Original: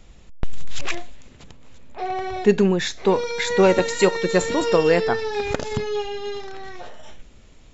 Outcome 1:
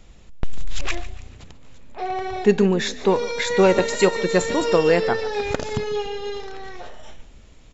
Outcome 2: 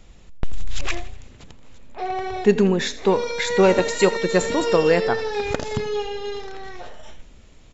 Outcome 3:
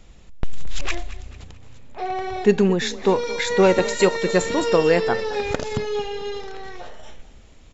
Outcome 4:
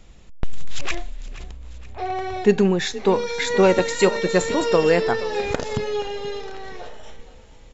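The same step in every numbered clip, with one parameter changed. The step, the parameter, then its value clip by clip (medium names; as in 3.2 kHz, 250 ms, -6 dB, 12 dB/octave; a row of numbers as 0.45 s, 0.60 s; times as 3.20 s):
frequency-shifting echo, time: 143 ms, 83 ms, 220 ms, 473 ms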